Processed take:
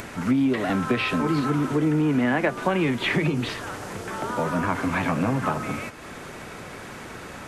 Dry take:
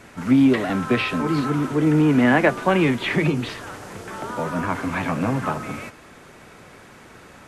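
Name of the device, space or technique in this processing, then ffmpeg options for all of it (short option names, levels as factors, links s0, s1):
upward and downward compression: -af "acompressor=mode=upward:threshold=0.0251:ratio=2.5,acompressor=threshold=0.0891:ratio=4,volume=1.19"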